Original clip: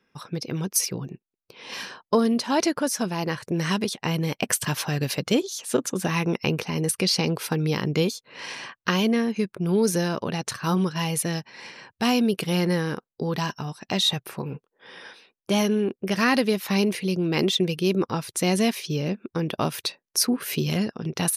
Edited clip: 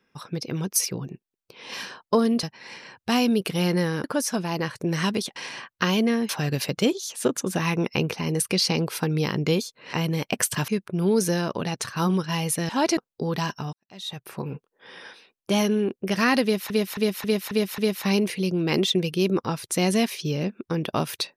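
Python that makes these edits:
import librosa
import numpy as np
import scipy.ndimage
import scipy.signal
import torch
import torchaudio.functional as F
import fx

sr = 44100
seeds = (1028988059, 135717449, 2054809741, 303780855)

y = fx.edit(x, sr, fx.swap(start_s=2.43, length_s=0.28, other_s=11.36, other_length_s=1.61),
    fx.swap(start_s=4.03, length_s=0.75, other_s=8.42, other_length_s=0.93),
    fx.fade_in_span(start_s=13.73, length_s=0.68, curve='qua'),
    fx.repeat(start_s=16.43, length_s=0.27, count=6), tone=tone)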